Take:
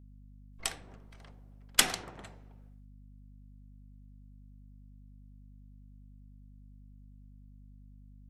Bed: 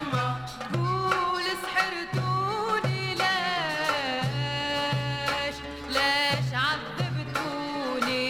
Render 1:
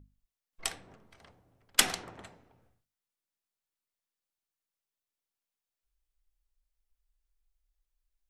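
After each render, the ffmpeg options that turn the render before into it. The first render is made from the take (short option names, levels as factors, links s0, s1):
-af "bandreject=f=50:t=h:w=6,bandreject=f=100:t=h:w=6,bandreject=f=150:t=h:w=6,bandreject=f=200:t=h:w=6,bandreject=f=250:t=h:w=6"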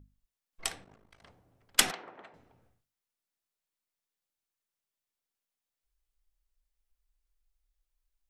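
-filter_complex "[0:a]asettb=1/sr,asplit=3[s0][s1][s2];[s0]atrim=end=0.844[s3];[s1]atrim=start=0.84:end=1.24,asetpts=PTS-STARTPTS,afade=t=in:d=0.004:c=qsin,afade=t=out:st=0.396:d=0.004:c=qsin,tremolo=f=52:d=0.857[s4];[s2]atrim=start=1.236[s5];[s3][s4]acrossfade=d=0.004:c1=hsin:c2=qsin[s6];[s6][s5]acrossfade=d=0.004:c1=qsin:c2=hsin,asettb=1/sr,asplit=3[s7][s8][s9];[s7]atrim=end=1.914[s10];[s8]atrim=start=1.91:end=2.34,asetpts=PTS-STARTPTS,afade=t=in:d=0.004:c=qsin,afade=t=out:st=0.426:d=0.004:c=qsin,highpass=340,lowpass=2500[s11];[s9]atrim=start=2.336[s12];[s10][s11]acrossfade=d=0.004:c1=hsin:c2=qsin[s13];[s13][s12]acrossfade=d=0.004:c1=qsin:c2=hsin"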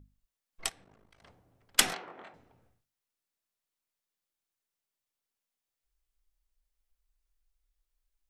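-filter_complex "[0:a]asettb=1/sr,asplit=3[s0][s1][s2];[s0]atrim=end=0.694[s3];[s1]atrim=start=0.69:end=1.25,asetpts=PTS-STARTPTS,afade=t=in:d=0.004:c=qsin,afade=t=out:st=0.556:d=0.004:c=qsin,acompressor=threshold=0.00141:ratio=3:attack=3.2:release=140:knee=1:detection=peak[s4];[s2]atrim=start=1.246[s5];[s3][s4]acrossfade=d=0.004:c1=hsin:c2=qsin[s6];[s6][s5]acrossfade=d=0.004:c1=qsin:c2=hsin,asettb=1/sr,asplit=3[s7][s8][s9];[s7]atrim=end=1.894[s10];[s8]atrim=start=1.89:end=2.34,asetpts=PTS-STARTPTS,afade=t=in:d=0.004:c=qsin,afade=t=out:st=0.446:d=0.004:c=qsin,asplit=2[s11][s12];[s12]adelay=23,volume=0.75[s13];[s11][s13]amix=inputs=2:normalize=0,atrim=end_sample=19845[s14];[s9]atrim=start=2.336[s15];[s10][s14]acrossfade=d=0.004:c1=hsin:c2=qsin[s16];[s16][s15]acrossfade=d=0.004:c1=qsin:c2=hsin"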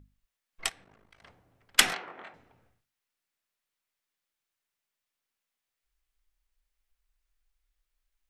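-af "equalizer=f=2000:t=o:w=1.9:g=6"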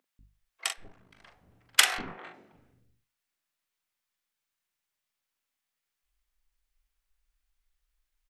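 -filter_complex "[0:a]asplit=2[s0][s1];[s1]adelay=42,volume=0.473[s2];[s0][s2]amix=inputs=2:normalize=0,acrossover=split=430[s3][s4];[s3]adelay=190[s5];[s5][s4]amix=inputs=2:normalize=0"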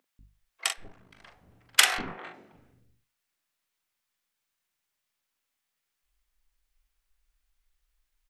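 -af "volume=1.41,alimiter=limit=0.891:level=0:latency=1"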